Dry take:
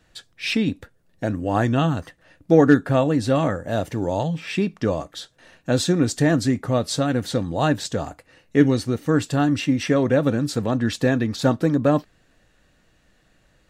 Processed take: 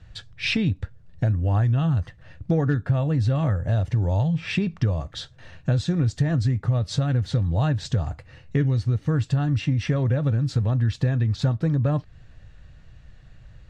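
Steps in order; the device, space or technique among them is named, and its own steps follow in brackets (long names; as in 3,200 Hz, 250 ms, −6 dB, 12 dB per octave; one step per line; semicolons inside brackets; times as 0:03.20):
jukebox (low-pass filter 5,400 Hz 12 dB per octave; low shelf with overshoot 170 Hz +14 dB, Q 1.5; downward compressor 5 to 1, threshold −22 dBFS, peak gain reduction 14.5 dB)
level +2 dB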